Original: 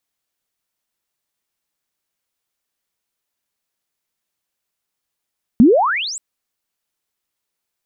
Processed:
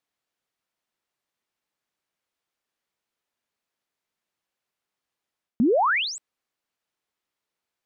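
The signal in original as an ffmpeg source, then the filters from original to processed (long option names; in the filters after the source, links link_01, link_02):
-f lavfi -i "aevalsrc='pow(10,(-4-21.5*t/0.58)/20)*sin(2*PI*210*0.58/log(8200/210)*(exp(log(8200/210)*t/0.58)-1))':duration=0.58:sample_rate=44100"
-af "lowpass=frequency=2900:poles=1,lowshelf=frequency=100:gain=-9,areverse,acompressor=threshold=-20dB:ratio=4,areverse"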